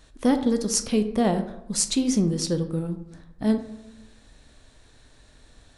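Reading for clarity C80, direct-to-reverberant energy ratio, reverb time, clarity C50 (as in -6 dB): 13.0 dB, 7.0 dB, 0.85 s, 10.5 dB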